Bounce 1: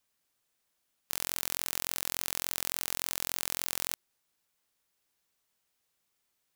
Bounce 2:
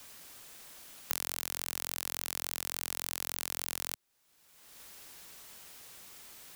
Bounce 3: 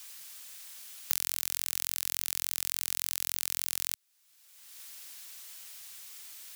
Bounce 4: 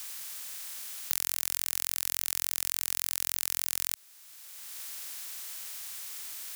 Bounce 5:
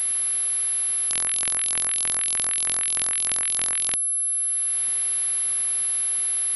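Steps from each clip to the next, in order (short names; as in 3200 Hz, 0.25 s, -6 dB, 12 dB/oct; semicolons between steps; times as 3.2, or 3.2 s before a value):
three-band squash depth 100%; gain -3 dB
tilt shelf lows -9.5 dB, about 1100 Hz; gain -4.5 dB
per-bin compression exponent 0.6; gain -1 dB
pulse-width modulation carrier 11000 Hz; gain +2.5 dB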